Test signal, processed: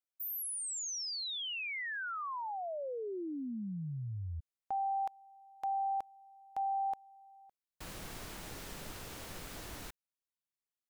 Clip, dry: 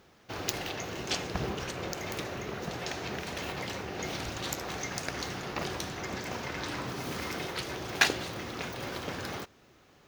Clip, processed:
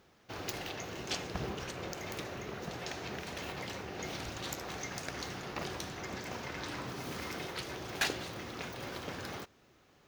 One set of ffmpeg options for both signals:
-af "asoftclip=type=hard:threshold=-20dB,volume=-4.5dB"

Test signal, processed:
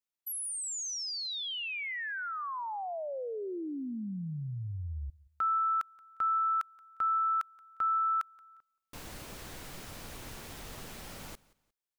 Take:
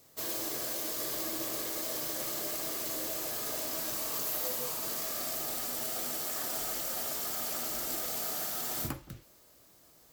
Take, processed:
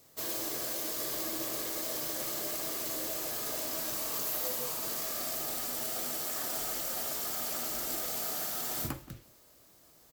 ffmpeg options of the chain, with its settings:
-af "aecho=1:1:177|354:0.075|0.0217"

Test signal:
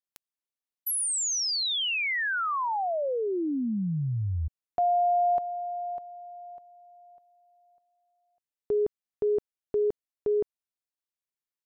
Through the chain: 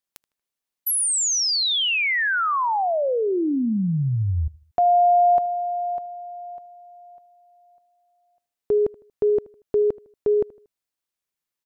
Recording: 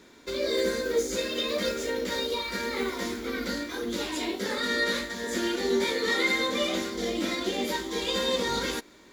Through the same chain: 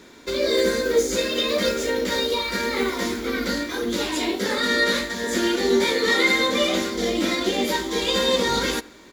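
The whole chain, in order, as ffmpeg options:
-filter_complex "[0:a]asplit=2[a][b];[b]adelay=78,lowpass=f=3.6k:p=1,volume=-21dB,asplit=2[c][d];[d]adelay=78,lowpass=f=3.6k:p=1,volume=0.4,asplit=2[e][f];[f]adelay=78,lowpass=f=3.6k:p=1,volume=0.4[g];[a][c][e][g]amix=inputs=4:normalize=0,volume=6.5dB"

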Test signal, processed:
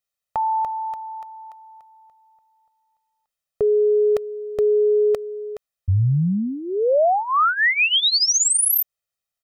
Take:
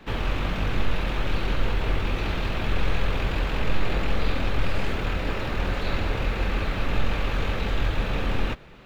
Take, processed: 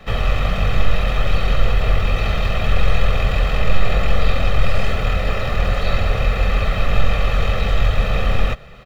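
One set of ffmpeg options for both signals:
-af "aecho=1:1:1.6:0.72,volume=4.5dB"

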